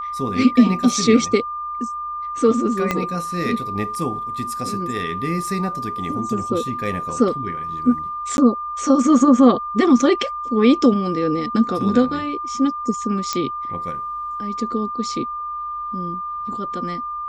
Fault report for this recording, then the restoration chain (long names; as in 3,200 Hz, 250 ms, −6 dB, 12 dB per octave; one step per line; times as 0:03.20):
whistle 1,200 Hz −25 dBFS
0:02.91: click −6 dBFS
0:08.37–0:08.38: drop-out 11 ms
0:13.33: click −7 dBFS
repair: click removal
notch filter 1,200 Hz, Q 30
repair the gap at 0:08.37, 11 ms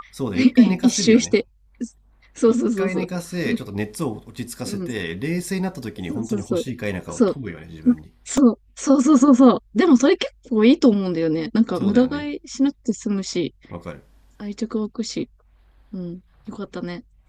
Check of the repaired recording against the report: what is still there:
0:02.91: click